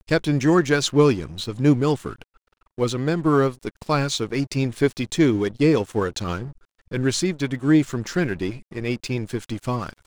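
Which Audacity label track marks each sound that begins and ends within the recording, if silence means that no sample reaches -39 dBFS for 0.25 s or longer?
2.780000	6.520000	sound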